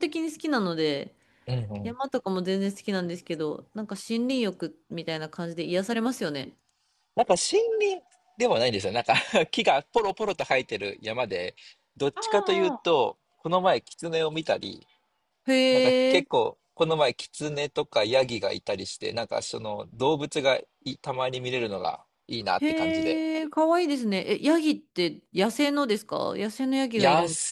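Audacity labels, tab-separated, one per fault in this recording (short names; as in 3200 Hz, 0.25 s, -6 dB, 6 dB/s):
9.970000	10.420000	clipped -20 dBFS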